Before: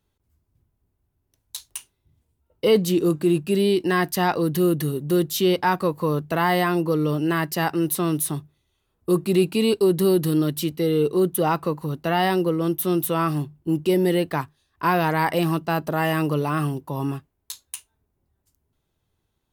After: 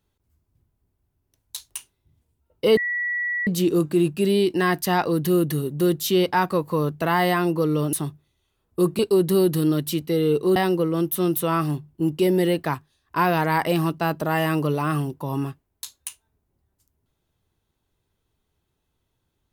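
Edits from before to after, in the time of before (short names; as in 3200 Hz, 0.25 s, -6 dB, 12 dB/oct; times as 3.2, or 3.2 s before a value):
2.77 add tone 1940 Hz -22.5 dBFS 0.70 s
7.23–8.23 cut
9.29–9.69 cut
11.26–12.23 cut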